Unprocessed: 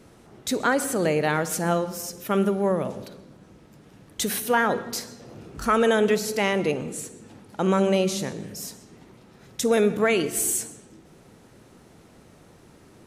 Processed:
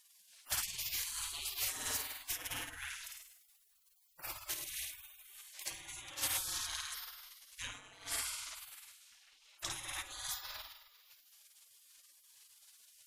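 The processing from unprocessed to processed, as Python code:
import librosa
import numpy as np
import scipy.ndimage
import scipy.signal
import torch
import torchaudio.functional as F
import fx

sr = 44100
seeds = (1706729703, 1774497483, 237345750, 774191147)

y = fx.tilt_eq(x, sr, slope=2.5, at=(3.1, 4.23))
y = fx.lowpass(y, sr, hz=1800.0, slope=6, at=(8.14, 9.7), fade=0.02)
y = fx.room_flutter(y, sr, wall_m=8.9, rt60_s=1.1)
y = fx.over_compress(y, sr, threshold_db=-22.0, ratio=-0.5)
y = fx.spec_gate(y, sr, threshold_db=-30, keep='weak')
y = y * librosa.db_to_amplitude(1.5)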